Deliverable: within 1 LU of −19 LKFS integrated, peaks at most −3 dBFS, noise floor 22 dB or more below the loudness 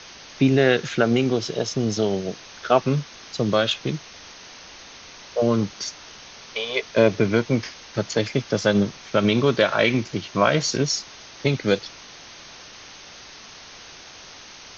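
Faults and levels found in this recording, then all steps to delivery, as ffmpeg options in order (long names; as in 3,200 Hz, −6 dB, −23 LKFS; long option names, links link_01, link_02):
background noise floor −44 dBFS; target noise floor −45 dBFS; integrated loudness −22.5 LKFS; sample peak −4.5 dBFS; target loudness −19.0 LKFS
→ -af "afftdn=noise_reduction=6:noise_floor=-44"
-af "volume=3.5dB,alimiter=limit=-3dB:level=0:latency=1"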